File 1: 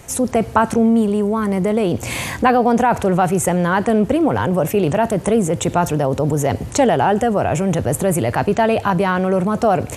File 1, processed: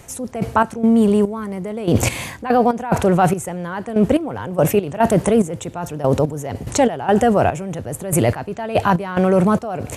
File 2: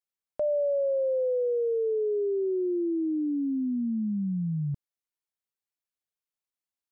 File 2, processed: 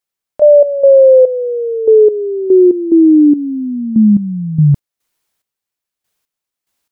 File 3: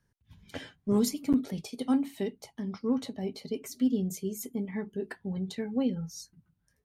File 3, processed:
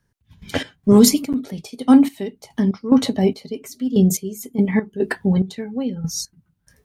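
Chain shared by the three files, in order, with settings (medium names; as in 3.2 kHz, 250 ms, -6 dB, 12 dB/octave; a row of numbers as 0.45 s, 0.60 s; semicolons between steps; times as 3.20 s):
reverse; compression 6:1, threshold -23 dBFS; reverse; trance gate "..x.xx...x" 72 bpm -12 dB; peak normalisation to -1.5 dBFS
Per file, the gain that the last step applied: +11.5 dB, +22.0 dB, +17.0 dB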